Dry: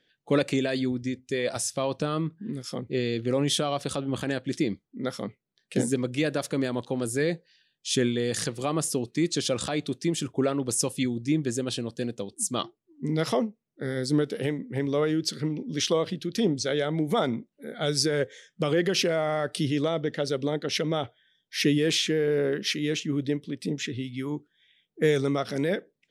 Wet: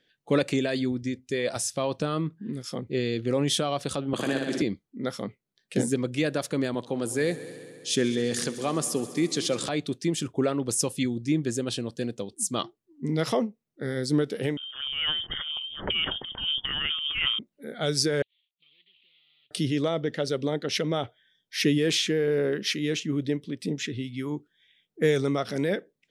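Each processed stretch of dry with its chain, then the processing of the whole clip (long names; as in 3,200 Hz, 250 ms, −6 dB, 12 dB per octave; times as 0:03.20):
0:04.13–0:04.62: high-pass filter 200 Hz + flutter between parallel walls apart 10.1 metres, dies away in 1 s + multiband upward and downward compressor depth 70%
0:06.74–0:09.69: high-pass filter 140 Hz + echo machine with several playback heads 67 ms, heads all three, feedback 68%, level −21 dB
0:14.57–0:17.39: low-shelf EQ 360 Hz −9 dB + transient designer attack −10 dB, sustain +12 dB + voice inversion scrambler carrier 3,400 Hz
0:18.22–0:19.51: variable-slope delta modulation 16 kbit/s + inverse Chebyshev high-pass filter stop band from 1,700 Hz, stop band 50 dB
whole clip: no processing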